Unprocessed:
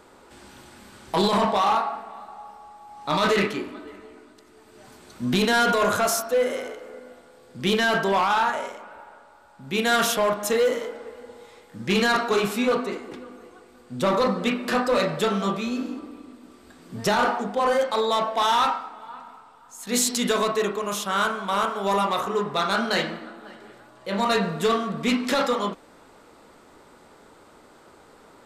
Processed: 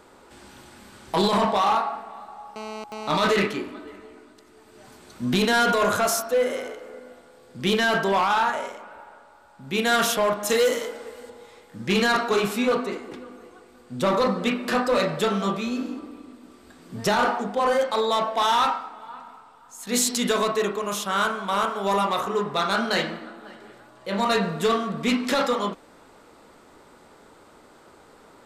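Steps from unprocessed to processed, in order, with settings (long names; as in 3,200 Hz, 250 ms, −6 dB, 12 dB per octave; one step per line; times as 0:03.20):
0:02.56–0:03.20: phone interference −35 dBFS
0:10.49–0:11.30: high-shelf EQ 3,400 Hz +11 dB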